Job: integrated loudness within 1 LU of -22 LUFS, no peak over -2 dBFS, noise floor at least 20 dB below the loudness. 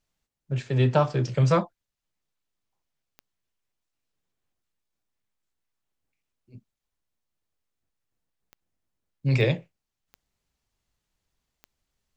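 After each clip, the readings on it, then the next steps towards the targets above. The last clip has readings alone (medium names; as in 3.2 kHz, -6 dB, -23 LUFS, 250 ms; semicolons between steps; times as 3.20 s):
clicks found 5; loudness -24.5 LUFS; peak level -8.0 dBFS; loudness target -22.0 LUFS
-> de-click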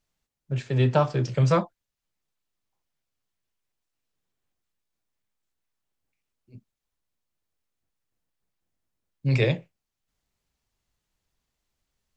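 clicks found 0; loudness -24.5 LUFS; peak level -8.0 dBFS; loudness target -22.0 LUFS
-> trim +2.5 dB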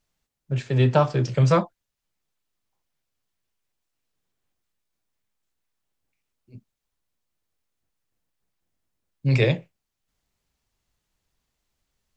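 loudness -22.0 LUFS; peak level -5.5 dBFS; noise floor -83 dBFS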